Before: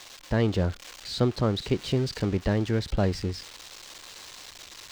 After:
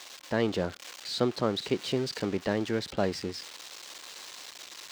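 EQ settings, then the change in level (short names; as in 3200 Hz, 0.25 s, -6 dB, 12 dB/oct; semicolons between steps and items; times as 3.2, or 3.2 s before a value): Bessel high-pass 260 Hz, order 2; 0.0 dB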